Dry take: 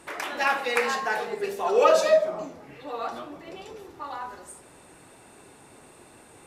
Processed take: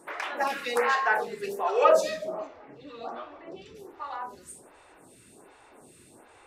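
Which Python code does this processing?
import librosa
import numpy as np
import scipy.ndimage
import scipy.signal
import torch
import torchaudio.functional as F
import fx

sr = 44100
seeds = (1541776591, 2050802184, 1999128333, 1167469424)

y = fx.dynamic_eq(x, sr, hz=1400.0, q=0.71, threshold_db=-35.0, ratio=4.0, max_db=5, at=(0.38, 1.61))
y = fx.lowpass(y, sr, hz=4600.0, slope=12, at=(2.47, 3.75))
y = fx.stagger_phaser(y, sr, hz=1.3)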